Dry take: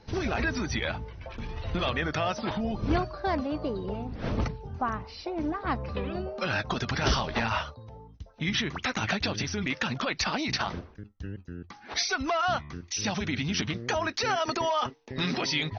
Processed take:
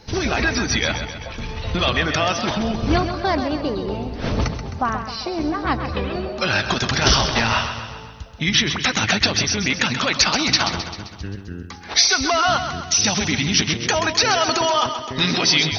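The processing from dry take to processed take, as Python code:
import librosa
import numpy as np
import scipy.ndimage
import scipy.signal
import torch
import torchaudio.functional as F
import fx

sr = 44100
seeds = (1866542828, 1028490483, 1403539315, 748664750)

y = fx.high_shelf(x, sr, hz=3800.0, db=11.5)
y = fx.echo_feedback(y, sr, ms=131, feedback_pct=56, wet_db=-9)
y = y * 10.0 ** (7.0 / 20.0)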